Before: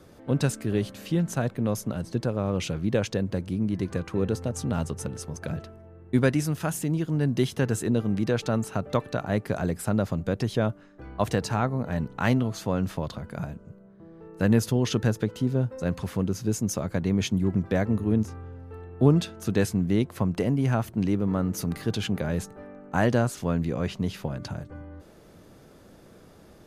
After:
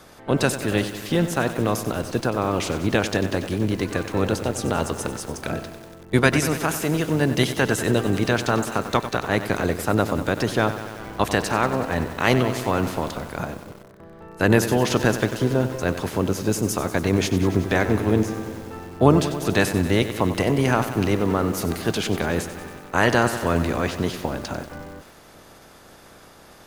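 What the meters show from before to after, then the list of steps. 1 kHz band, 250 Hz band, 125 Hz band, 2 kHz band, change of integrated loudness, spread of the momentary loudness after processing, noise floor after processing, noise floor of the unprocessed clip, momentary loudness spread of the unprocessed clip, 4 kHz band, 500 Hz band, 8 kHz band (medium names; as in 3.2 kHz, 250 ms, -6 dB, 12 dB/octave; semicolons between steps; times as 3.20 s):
+9.5 dB, +3.0 dB, +1.5 dB, +11.0 dB, +4.5 dB, 10 LU, -48 dBFS, -52 dBFS, 11 LU, +8.5 dB, +6.0 dB, +6.5 dB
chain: spectral peaks clipped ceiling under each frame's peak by 15 dB; bit-crushed delay 94 ms, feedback 80%, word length 7-bit, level -11.5 dB; trim +4 dB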